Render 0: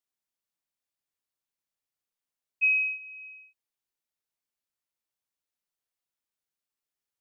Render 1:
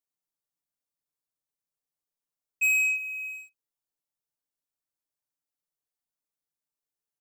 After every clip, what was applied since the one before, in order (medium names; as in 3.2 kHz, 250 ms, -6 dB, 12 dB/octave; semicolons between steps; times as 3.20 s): peaking EQ 2.5 kHz -8 dB 1.8 oct; comb 6.8 ms, depth 60%; waveshaping leveller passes 3; trim +3.5 dB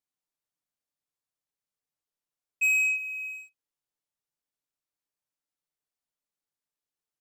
treble shelf 11 kHz -7 dB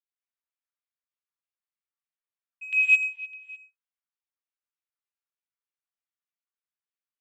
LFO band-pass saw down 3.3 Hz 950–3100 Hz; gated-style reverb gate 240 ms rising, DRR -4.5 dB; upward expansion 1.5:1, over -39 dBFS; trim +4.5 dB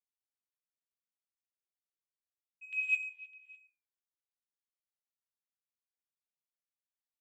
flange 0.38 Hz, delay 8.2 ms, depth 7.2 ms, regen +72%; trim -8 dB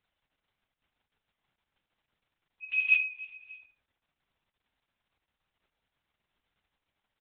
early reflections 20 ms -5 dB, 36 ms -5.5 dB, 72 ms -16.5 dB; crackle 190 per s -66 dBFS; LPC vocoder at 8 kHz whisper; trim +7 dB